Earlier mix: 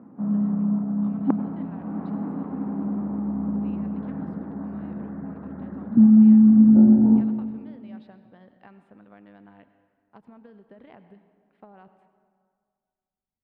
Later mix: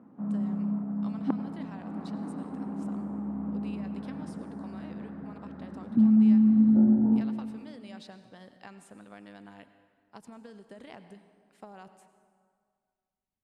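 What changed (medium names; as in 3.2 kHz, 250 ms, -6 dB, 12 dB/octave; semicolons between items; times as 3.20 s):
background -7.5 dB; master: remove distance through air 490 m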